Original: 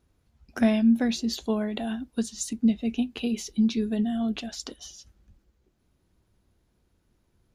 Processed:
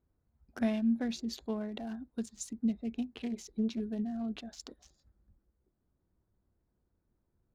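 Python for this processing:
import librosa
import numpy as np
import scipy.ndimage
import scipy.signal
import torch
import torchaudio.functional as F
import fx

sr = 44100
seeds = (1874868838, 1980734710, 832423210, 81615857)

y = fx.wiener(x, sr, points=15)
y = fx.doppler_dist(y, sr, depth_ms=0.42, at=(3.15, 3.8))
y = y * librosa.db_to_amplitude(-9.0)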